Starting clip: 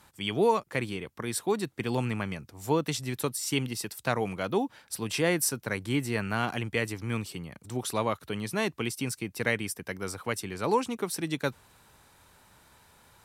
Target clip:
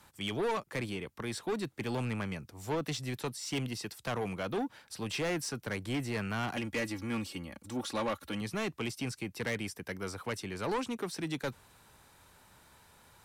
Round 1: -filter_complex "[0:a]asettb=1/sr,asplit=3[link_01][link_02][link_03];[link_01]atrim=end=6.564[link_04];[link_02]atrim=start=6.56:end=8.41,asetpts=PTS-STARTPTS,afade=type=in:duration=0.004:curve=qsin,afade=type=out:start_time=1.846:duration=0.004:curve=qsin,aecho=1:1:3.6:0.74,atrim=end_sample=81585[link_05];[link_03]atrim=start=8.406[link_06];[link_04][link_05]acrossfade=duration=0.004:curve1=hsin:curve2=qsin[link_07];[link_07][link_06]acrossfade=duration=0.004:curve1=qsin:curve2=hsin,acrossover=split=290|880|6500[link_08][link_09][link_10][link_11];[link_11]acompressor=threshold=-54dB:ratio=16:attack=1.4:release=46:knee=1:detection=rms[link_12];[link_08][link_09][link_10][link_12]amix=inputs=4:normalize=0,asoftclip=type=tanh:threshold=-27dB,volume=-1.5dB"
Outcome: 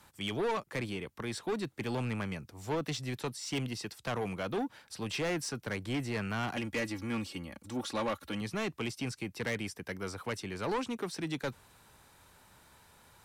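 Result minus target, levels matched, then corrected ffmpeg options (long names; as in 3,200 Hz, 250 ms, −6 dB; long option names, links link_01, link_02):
downward compressor: peak gain reduction +5.5 dB
-filter_complex "[0:a]asettb=1/sr,asplit=3[link_01][link_02][link_03];[link_01]atrim=end=6.564[link_04];[link_02]atrim=start=6.56:end=8.41,asetpts=PTS-STARTPTS,afade=type=in:duration=0.004:curve=qsin,afade=type=out:start_time=1.846:duration=0.004:curve=qsin,aecho=1:1:3.6:0.74,atrim=end_sample=81585[link_05];[link_03]atrim=start=8.406[link_06];[link_04][link_05]acrossfade=duration=0.004:curve1=hsin:curve2=qsin[link_07];[link_07][link_06]acrossfade=duration=0.004:curve1=qsin:curve2=hsin,acrossover=split=290|880|6500[link_08][link_09][link_10][link_11];[link_11]acompressor=threshold=-48dB:ratio=16:attack=1.4:release=46:knee=1:detection=rms[link_12];[link_08][link_09][link_10][link_12]amix=inputs=4:normalize=0,asoftclip=type=tanh:threshold=-27dB,volume=-1.5dB"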